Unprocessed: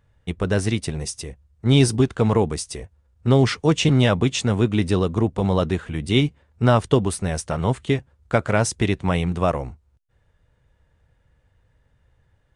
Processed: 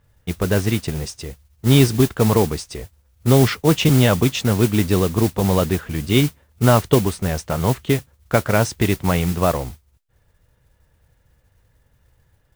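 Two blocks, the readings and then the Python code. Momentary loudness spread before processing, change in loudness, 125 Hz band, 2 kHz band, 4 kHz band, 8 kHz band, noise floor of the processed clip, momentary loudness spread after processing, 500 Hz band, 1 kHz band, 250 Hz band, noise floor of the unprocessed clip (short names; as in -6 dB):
12 LU, +2.5 dB, +2.5 dB, +2.0 dB, +2.0 dB, +2.5 dB, -61 dBFS, 13 LU, +2.5 dB, +2.5 dB, +2.5 dB, -64 dBFS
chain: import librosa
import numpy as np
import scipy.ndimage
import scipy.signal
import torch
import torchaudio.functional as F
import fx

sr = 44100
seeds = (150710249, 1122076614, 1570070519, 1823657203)

y = fx.air_absorb(x, sr, metres=70.0)
y = fx.mod_noise(y, sr, seeds[0], snr_db=15)
y = F.gain(torch.from_numpy(y), 2.5).numpy()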